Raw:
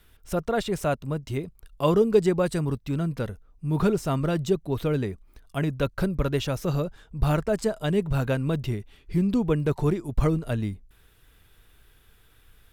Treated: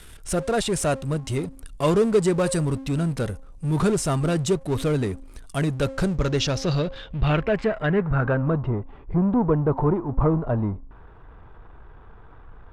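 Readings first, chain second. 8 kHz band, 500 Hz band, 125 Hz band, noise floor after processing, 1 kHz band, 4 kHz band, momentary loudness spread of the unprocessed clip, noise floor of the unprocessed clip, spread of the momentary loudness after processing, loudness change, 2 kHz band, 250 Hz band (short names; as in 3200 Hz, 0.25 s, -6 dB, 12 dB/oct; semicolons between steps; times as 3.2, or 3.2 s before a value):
+10.0 dB, +2.0 dB, +3.0 dB, -46 dBFS, +3.5 dB, +5.5 dB, 10 LU, -58 dBFS, 9 LU, +2.5 dB, +4.5 dB, +2.5 dB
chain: de-hum 267.8 Hz, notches 4; power-law curve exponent 0.7; low-pass sweep 9200 Hz -> 980 Hz, 5.82–8.69; gain -1.5 dB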